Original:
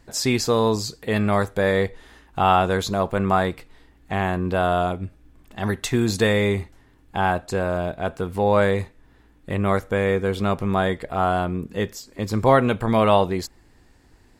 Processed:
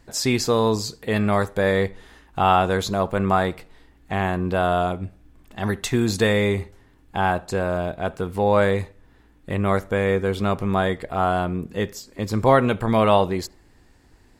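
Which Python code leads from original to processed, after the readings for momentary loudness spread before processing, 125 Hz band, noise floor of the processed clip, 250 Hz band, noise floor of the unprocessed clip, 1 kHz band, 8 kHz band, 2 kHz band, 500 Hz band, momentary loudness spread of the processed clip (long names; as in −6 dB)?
11 LU, 0.0 dB, −55 dBFS, 0.0 dB, −55 dBFS, 0.0 dB, 0.0 dB, 0.0 dB, 0.0 dB, 11 LU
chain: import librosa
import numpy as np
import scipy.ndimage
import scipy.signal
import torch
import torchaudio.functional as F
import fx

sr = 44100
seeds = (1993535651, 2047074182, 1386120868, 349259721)

y = fx.echo_filtered(x, sr, ms=72, feedback_pct=40, hz=2000.0, wet_db=-23)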